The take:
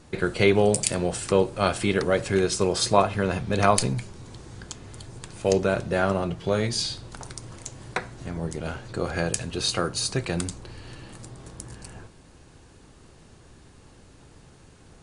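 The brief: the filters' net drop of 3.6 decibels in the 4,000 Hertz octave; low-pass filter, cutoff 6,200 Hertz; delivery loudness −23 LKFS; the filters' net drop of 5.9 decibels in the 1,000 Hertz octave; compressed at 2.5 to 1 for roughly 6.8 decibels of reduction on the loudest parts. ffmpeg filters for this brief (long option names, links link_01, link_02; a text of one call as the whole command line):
ffmpeg -i in.wav -af "lowpass=6200,equalizer=frequency=1000:width_type=o:gain=-8.5,equalizer=frequency=4000:width_type=o:gain=-3,acompressor=threshold=-26dB:ratio=2.5,volume=8.5dB" out.wav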